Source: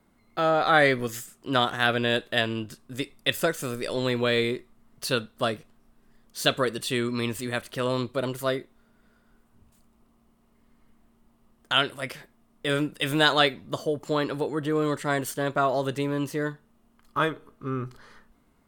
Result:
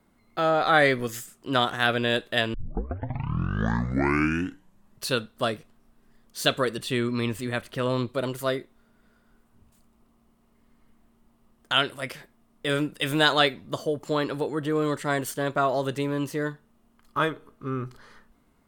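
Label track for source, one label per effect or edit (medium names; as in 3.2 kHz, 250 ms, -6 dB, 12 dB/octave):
2.540000	2.540000	tape start 2.59 s
6.770000	8.080000	tone controls bass +3 dB, treble -5 dB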